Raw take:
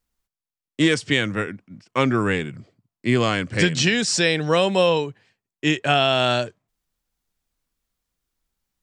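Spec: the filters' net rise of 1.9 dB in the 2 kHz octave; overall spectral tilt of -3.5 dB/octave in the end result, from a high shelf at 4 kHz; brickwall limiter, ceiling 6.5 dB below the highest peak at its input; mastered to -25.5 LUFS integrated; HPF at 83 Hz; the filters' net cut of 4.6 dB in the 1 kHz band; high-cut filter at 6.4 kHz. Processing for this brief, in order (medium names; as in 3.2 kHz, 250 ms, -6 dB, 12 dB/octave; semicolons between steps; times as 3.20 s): high-pass 83 Hz; low-pass 6.4 kHz; peaking EQ 1 kHz -8.5 dB; peaking EQ 2 kHz +6.5 dB; treble shelf 4 kHz -7.5 dB; trim -2.5 dB; peak limiter -12.5 dBFS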